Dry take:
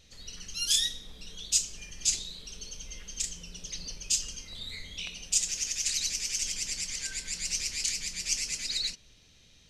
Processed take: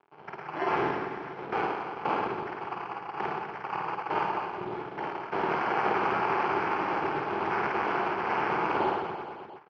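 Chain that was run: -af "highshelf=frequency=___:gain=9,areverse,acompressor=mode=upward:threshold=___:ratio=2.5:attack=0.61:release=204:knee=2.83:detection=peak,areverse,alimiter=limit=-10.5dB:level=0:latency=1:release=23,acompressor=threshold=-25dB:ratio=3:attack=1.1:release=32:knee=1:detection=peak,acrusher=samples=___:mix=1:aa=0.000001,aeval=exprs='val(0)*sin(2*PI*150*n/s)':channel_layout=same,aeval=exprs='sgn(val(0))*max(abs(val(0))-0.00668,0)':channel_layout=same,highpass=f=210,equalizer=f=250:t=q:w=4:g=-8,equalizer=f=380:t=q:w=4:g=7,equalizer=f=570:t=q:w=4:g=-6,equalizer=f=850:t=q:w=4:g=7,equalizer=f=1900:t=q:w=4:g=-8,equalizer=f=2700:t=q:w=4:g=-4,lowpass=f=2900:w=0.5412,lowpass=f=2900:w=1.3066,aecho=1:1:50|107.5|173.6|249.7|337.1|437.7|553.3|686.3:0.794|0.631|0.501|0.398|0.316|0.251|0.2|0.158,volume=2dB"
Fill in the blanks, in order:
2300, -35dB, 12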